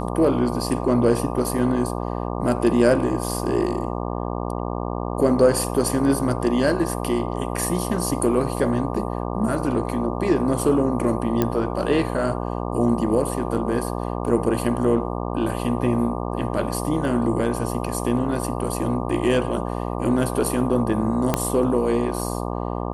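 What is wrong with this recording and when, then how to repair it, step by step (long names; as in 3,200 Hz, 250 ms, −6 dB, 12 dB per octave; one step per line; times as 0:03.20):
mains buzz 60 Hz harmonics 20 −27 dBFS
0:11.42: click −7 dBFS
0:21.34: click −4 dBFS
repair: click removal
hum removal 60 Hz, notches 20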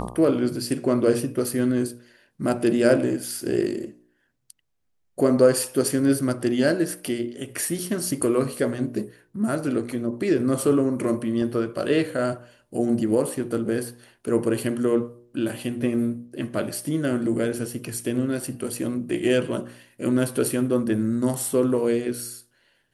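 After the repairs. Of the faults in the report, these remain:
0:11.42: click
0:21.34: click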